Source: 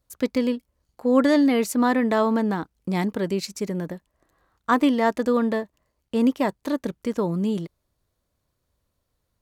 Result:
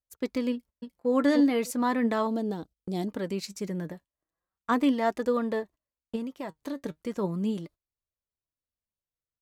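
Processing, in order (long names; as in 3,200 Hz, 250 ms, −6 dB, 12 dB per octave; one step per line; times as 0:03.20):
0:02.27–0:03.08: flat-topped bell 1,500 Hz −12.5 dB
noise gate −42 dBFS, range −19 dB
0:00.52–0:01.10: delay throw 300 ms, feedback 10%, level −2.5 dB
0:06.15–0:06.83: downward compressor 6 to 1, threshold −26 dBFS, peak gain reduction 10.5 dB
flanger 0.37 Hz, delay 1.5 ms, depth 5.8 ms, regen +61%
level −1.5 dB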